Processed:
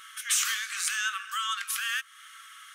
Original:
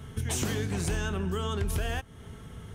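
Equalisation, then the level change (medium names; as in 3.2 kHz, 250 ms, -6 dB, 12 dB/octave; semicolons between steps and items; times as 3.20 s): brick-wall FIR high-pass 1.1 kHz; +8.5 dB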